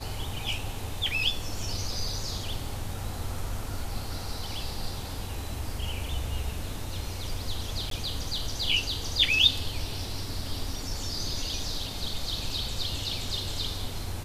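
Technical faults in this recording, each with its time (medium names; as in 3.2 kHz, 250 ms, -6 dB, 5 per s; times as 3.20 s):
7.90–7.91 s: dropout 13 ms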